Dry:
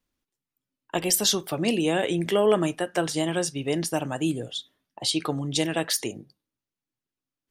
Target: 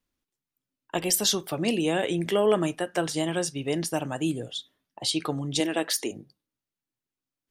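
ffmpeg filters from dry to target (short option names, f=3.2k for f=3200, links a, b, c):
-filter_complex "[0:a]asettb=1/sr,asplit=3[a][b][c];[a]atrim=end=5.604[d];[b]atrim=start=5.6:end=6.11,asetpts=PTS-STARTPTS,afade=t=in:d=0.004:c=qsin,afade=t=out:st=0.506:d=0.004:c=qsin,lowshelf=f=190:t=q:w=1.5:g=-10.5[e];[c]atrim=start=6.106[f];[d][e]acrossfade=d=0.004:c1=hsin:c2=qsin[g];[g][f]acrossfade=d=0.004:c1=qsin:c2=hsin,volume=-1.5dB"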